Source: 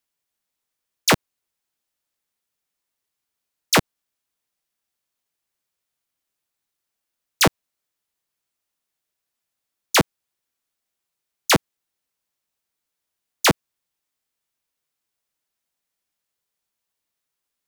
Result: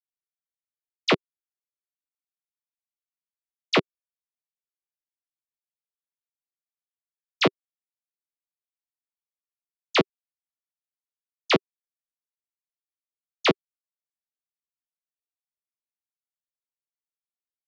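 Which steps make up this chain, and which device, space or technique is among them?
blown loudspeaker (crossover distortion -36.5 dBFS; cabinet simulation 200–4000 Hz, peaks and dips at 390 Hz +5 dB, 870 Hz -8 dB, 1.6 kHz -8 dB); trim -1.5 dB

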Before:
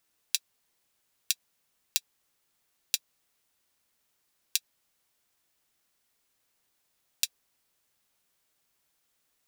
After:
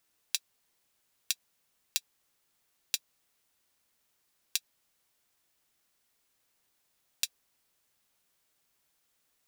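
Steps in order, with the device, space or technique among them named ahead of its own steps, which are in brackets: limiter into clipper (peak limiter -4 dBFS, peak gain reduction 2.5 dB; hard clipper -8.5 dBFS, distortion -16 dB)

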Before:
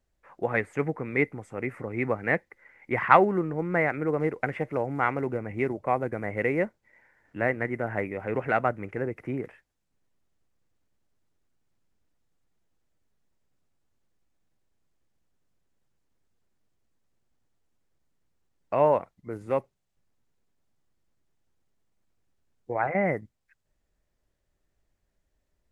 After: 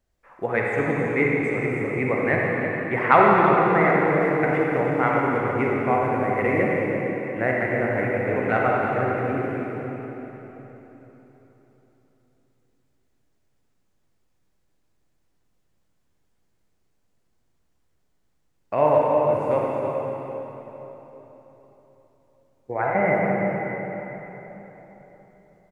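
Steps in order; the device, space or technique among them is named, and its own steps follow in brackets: cave (delay 324 ms -9.5 dB; reverberation RT60 3.9 s, pre-delay 35 ms, DRR -3.5 dB); trim +1 dB

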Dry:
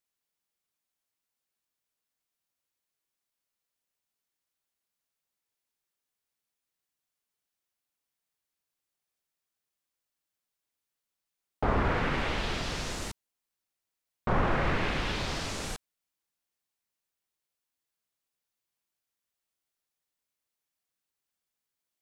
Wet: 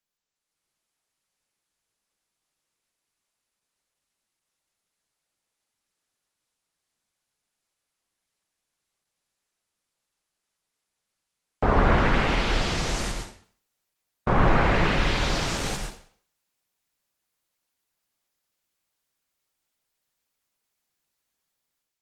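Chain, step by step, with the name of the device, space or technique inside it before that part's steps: speakerphone in a meeting room (reverberation RT60 0.50 s, pre-delay 92 ms, DRR 2.5 dB; level rider gain up to 10 dB; trim -3.5 dB; Opus 16 kbps 48 kHz)

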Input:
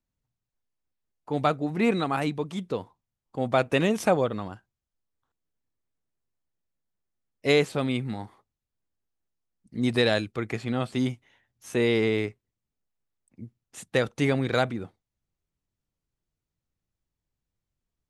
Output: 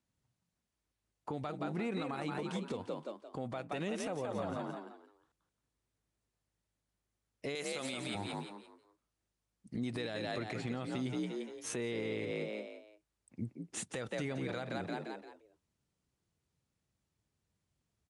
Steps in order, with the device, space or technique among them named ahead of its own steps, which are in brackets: 7.55–8.15 s: RIAA curve recording; frequency-shifting echo 173 ms, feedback 32%, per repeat +52 Hz, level -7 dB; podcast mastering chain (high-pass 68 Hz; compression 4:1, threshold -36 dBFS, peak gain reduction 17 dB; peak limiter -31.5 dBFS, peak gain reduction 11 dB; trim +3.5 dB; MP3 96 kbps 24 kHz)

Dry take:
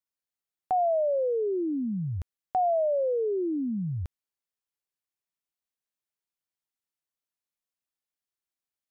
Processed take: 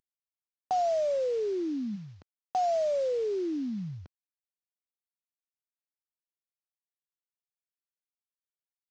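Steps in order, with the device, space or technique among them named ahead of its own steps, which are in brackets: early wireless headset (high-pass 170 Hz 12 dB/octave; CVSD coder 32 kbps); 1.95–2.67 s: high-pass 310 Hz -> 140 Hz 6 dB/octave; trim -2 dB

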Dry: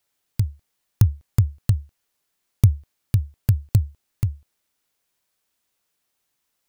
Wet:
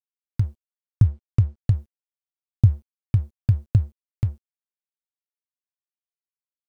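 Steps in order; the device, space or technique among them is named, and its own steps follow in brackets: 1.07–1.75 s: distance through air 86 m; early transistor amplifier (crossover distortion -45 dBFS; slew-rate limiter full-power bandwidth 80 Hz)

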